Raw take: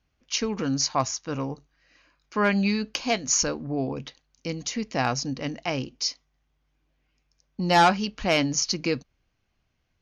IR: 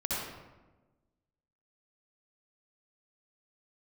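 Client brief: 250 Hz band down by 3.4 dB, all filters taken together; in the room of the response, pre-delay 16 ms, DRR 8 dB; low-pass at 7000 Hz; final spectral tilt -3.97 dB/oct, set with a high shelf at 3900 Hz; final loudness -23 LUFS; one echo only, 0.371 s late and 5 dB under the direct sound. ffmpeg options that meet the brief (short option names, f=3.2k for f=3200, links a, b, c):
-filter_complex "[0:a]lowpass=7k,equalizer=f=250:t=o:g=-4.5,highshelf=f=3.9k:g=-4.5,aecho=1:1:371:0.562,asplit=2[a][b];[1:a]atrim=start_sample=2205,adelay=16[c];[b][c]afir=irnorm=-1:irlink=0,volume=-14.5dB[d];[a][d]amix=inputs=2:normalize=0,volume=3.5dB"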